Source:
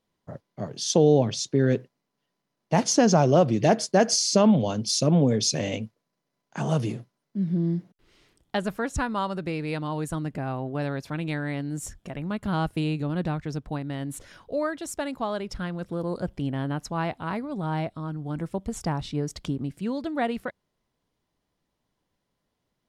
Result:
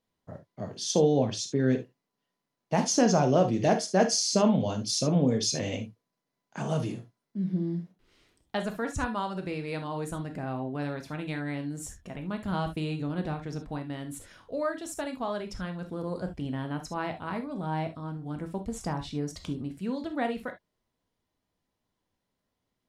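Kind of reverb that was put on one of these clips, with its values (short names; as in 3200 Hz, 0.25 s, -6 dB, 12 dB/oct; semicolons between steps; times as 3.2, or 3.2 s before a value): non-linear reverb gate 90 ms flat, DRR 5.5 dB; gain -4.5 dB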